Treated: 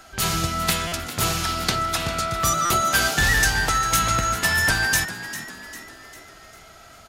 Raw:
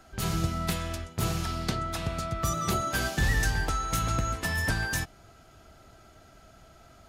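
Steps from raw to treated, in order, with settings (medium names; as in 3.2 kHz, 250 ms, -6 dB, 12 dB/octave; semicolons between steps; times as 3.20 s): tilt shelf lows -5.5 dB, about 660 Hz; frequency-shifting echo 399 ms, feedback 49%, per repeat +71 Hz, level -13 dB; buffer glitch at 0.87/2.65 s, samples 256, times 8; trim +6.5 dB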